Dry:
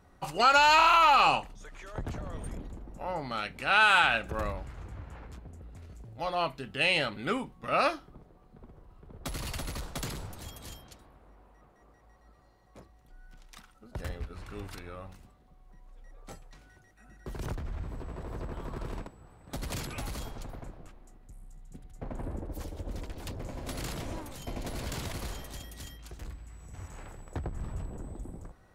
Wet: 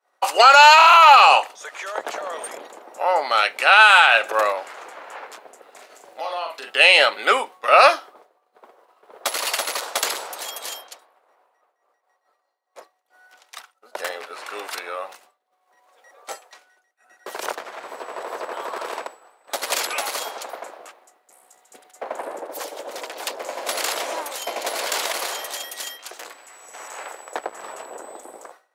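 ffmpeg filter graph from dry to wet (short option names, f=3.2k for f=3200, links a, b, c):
-filter_complex "[0:a]asettb=1/sr,asplit=3[a][b][c];[a]atrim=end=5.744[d];[b]atrim=start=5.74:end=6.7,asetpts=PTS-STARTPTS,afade=t=in:d=0.004:c=qsin,afade=t=out:st=0.956:d=0.004:c=qsin,acompressor=threshold=-40dB:ratio=16:attack=3.2:release=140:knee=1:detection=peak,asplit=2[e][f];[f]adelay=42,volume=-4.5dB[g];[e][g]amix=inputs=2:normalize=0,atrim=end_sample=42336[h];[c]atrim=start=6.696[i];[d][h]acrossfade=d=0.004:c1=hsin:c2=qsin[j];[j][i]acrossfade=d=0.004:c1=qsin:c2=hsin,agate=range=-33dB:threshold=-46dB:ratio=3:detection=peak,highpass=f=510:w=0.5412,highpass=f=510:w=1.3066,alimiter=level_in=17.5dB:limit=-1dB:release=50:level=0:latency=1,volume=-1dB"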